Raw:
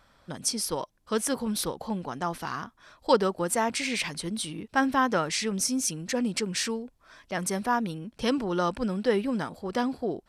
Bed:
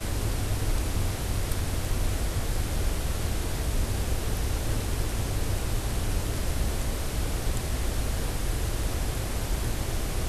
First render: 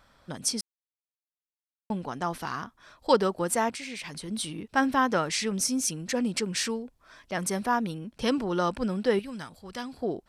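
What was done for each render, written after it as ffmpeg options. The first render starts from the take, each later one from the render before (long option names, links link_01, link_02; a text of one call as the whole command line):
ffmpeg -i in.wav -filter_complex "[0:a]asplit=3[link_01][link_02][link_03];[link_01]afade=type=out:start_time=3.69:duration=0.02[link_04];[link_02]acompressor=threshold=-35dB:ratio=5:attack=3.2:release=140:knee=1:detection=peak,afade=type=in:start_time=3.69:duration=0.02,afade=type=out:start_time=4.28:duration=0.02[link_05];[link_03]afade=type=in:start_time=4.28:duration=0.02[link_06];[link_04][link_05][link_06]amix=inputs=3:normalize=0,asettb=1/sr,asplit=3[link_07][link_08][link_09];[link_07]atrim=end=9.194[link_10];[link_08]atrim=start=9.19:end=9.97,asetpts=PTS-STARTPTS,afade=type=in:duration=0.004:curve=qsin,afade=type=out:start_time=0.776:duration=0.004:curve=qsin,equalizer=frequency=440:width=0.34:gain=-12[link_11];[link_09]atrim=start=9.966[link_12];[link_10][link_11]acrossfade=duration=0.004:curve1=hsin:curve2=qsin[link_13];[link_13][link_12]acrossfade=duration=0.004:curve1=qsin:curve2=hsin,asplit=3[link_14][link_15][link_16];[link_14]atrim=end=0.61,asetpts=PTS-STARTPTS,afade=type=out:start_time=0.606:duration=0.004:curve=hsin[link_17];[link_15]atrim=start=0.61:end=1.9,asetpts=PTS-STARTPTS,volume=0[link_18];[link_16]atrim=start=1.9,asetpts=PTS-STARTPTS,afade=type=in:duration=0.004:curve=hsin[link_19];[link_17][link_18][link_19]concat=n=3:v=0:a=1" out.wav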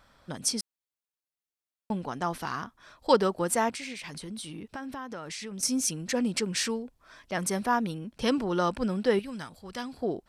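ffmpeg -i in.wav -filter_complex "[0:a]asettb=1/sr,asplit=3[link_01][link_02][link_03];[link_01]atrim=end=3.924[link_04];[link_02]atrim=start=3.92:end=5.63,asetpts=PTS-STARTPTS,afade=type=in:duration=0.004:curve=qsin,afade=type=out:start_time=1.706:duration=0.004:curve=qsin,acompressor=threshold=-36dB:ratio=5:attack=3.2:release=140:knee=1:detection=peak[link_05];[link_03]atrim=start=5.626[link_06];[link_04][link_05]acrossfade=duration=0.004:curve1=hsin:curve2=qsin[link_07];[link_07][link_06]acrossfade=duration=0.004:curve1=qsin:curve2=hsin" out.wav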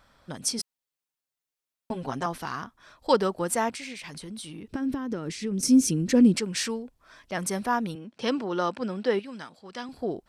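ffmpeg -i in.wav -filter_complex "[0:a]asettb=1/sr,asplit=3[link_01][link_02][link_03];[link_01]atrim=end=0.584[link_04];[link_02]atrim=start=0.58:end=2.26,asetpts=PTS-STARTPTS,afade=type=in:duration=0.004:curve=qsin,afade=type=out:start_time=1.676:duration=0.004:curve=qsin,aecho=1:1:7.5:0.95,atrim=end_sample=74088[link_05];[link_03]atrim=start=2.256[link_06];[link_04][link_05]acrossfade=duration=0.004:curve1=hsin:curve2=qsin[link_07];[link_07][link_06]acrossfade=duration=0.004:curve1=qsin:curve2=hsin,asettb=1/sr,asplit=3[link_08][link_09][link_10];[link_08]atrim=end=4.674[link_11];[link_09]atrim=start=4.67:end=6.36,asetpts=PTS-STARTPTS,afade=type=in:duration=0.004:curve=qsin,afade=type=out:start_time=1.686:duration=0.004:curve=qsin,lowshelf=frequency=510:width_type=q:width=1.5:gain=9.5[link_12];[link_10]atrim=start=6.356[link_13];[link_11][link_12]acrossfade=duration=0.004:curve1=hsin:curve2=qsin[link_14];[link_14][link_13]acrossfade=duration=0.004:curve1=qsin:curve2=hsin,asettb=1/sr,asplit=3[link_15][link_16][link_17];[link_15]atrim=end=7.954[link_18];[link_16]atrim=start=7.95:end=9.89,asetpts=PTS-STARTPTS,afade=type=in:duration=0.004:curve=qsin,afade=type=out:start_time=1.936:duration=0.004:curve=qsin,highpass=210,lowpass=6400[link_19];[link_17]atrim=start=9.886[link_20];[link_18][link_19]acrossfade=duration=0.004:curve1=hsin:curve2=qsin[link_21];[link_21][link_20]acrossfade=duration=0.004:curve1=qsin:curve2=hsin" out.wav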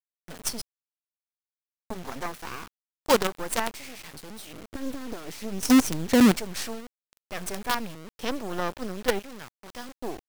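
ffmpeg -i in.wav -af "acrusher=bits=4:dc=4:mix=0:aa=0.000001" out.wav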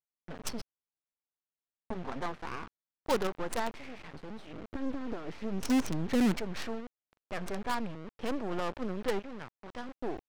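ffmpeg -i in.wav -af "adynamicsmooth=sensitivity=3.5:basefreq=1800,asoftclip=type=tanh:threshold=-22.5dB" out.wav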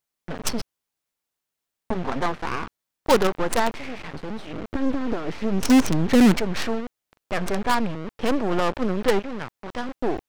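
ffmpeg -i in.wav -af "volume=11.5dB" out.wav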